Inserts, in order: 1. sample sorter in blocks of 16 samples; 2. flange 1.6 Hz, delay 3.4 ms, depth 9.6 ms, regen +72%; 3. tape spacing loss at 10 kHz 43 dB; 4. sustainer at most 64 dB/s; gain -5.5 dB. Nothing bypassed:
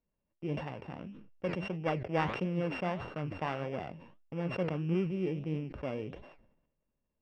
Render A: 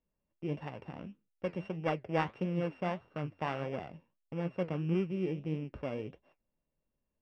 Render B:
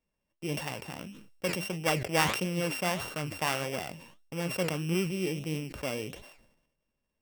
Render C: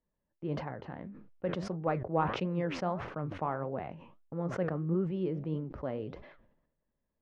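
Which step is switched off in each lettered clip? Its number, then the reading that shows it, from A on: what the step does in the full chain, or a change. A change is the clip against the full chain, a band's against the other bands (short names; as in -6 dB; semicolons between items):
4, 4 kHz band -2.0 dB; 3, 4 kHz band +11.0 dB; 1, distortion -5 dB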